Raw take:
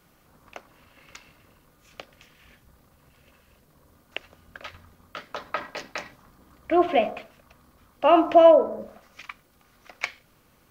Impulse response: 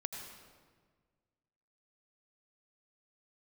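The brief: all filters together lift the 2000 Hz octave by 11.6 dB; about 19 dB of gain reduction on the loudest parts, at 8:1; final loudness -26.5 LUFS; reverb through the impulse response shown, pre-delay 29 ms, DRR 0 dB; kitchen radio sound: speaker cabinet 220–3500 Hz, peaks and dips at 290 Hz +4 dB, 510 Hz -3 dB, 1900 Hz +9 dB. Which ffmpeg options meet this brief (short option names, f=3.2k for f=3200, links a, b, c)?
-filter_complex "[0:a]equalizer=f=2k:t=o:g=8.5,acompressor=threshold=-29dB:ratio=8,asplit=2[a][b];[1:a]atrim=start_sample=2205,adelay=29[c];[b][c]afir=irnorm=-1:irlink=0,volume=0dB[d];[a][d]amix=inputs=2:normalize=0,highpass=220,equalizer=f=290:t=q:w=4:g=4,equalizer=f=510:t=q:w=4:g=-3,equalizer=f=1.9k:t=q:w=4:g=9,lowpass=f=3.5k:w=0.5412,lowpass=f=3.5k:w=1.3066,volume=6dB"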